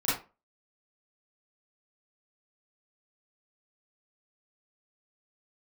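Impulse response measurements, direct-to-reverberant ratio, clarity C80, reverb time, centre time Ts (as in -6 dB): -11.5 dB, 10.0 dB, 0.30 s, 49 ms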